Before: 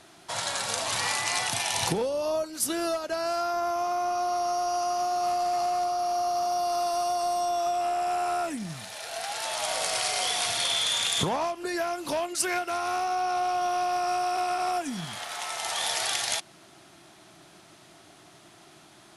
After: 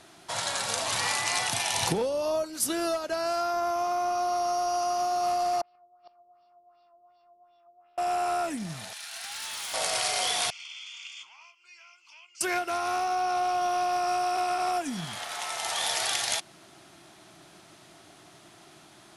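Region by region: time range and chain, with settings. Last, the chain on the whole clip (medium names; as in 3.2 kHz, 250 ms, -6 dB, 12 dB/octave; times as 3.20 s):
5.61–7.98 s: LFO low-pass sine 2.7 Hz 520–3800 Hz + inverted gate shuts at -21 dBFS, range -36 dB + careless resampling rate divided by 4×, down none, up filtered
8.93–9.74 s: Bessel high-pass 1.5 kHz, order 8 + hard clipper -33 dBFS
10.50–12.41 s: ladder band-pass 2.9 kHz, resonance 35% + static phaser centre 2.6 kHz, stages 8
whole clip: none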